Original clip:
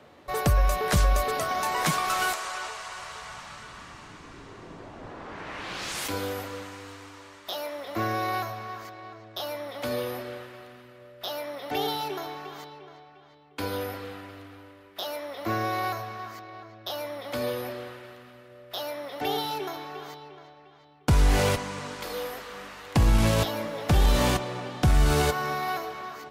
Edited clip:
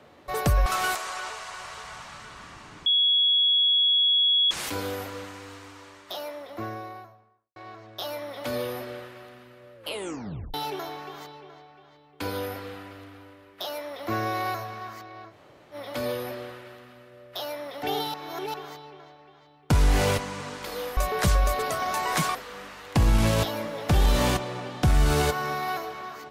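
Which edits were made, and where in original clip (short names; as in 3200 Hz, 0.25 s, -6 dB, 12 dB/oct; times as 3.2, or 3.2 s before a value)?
0.66–2.04 move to 22.35
4.24–5.89 bleep 3350 Hz -18 dBFS
7.23–8.94 studio fade out
11.13 tape stop 0.79 s
16.69–17.12 room tone, crossfade 0.06 s
19.52–19.92 reverse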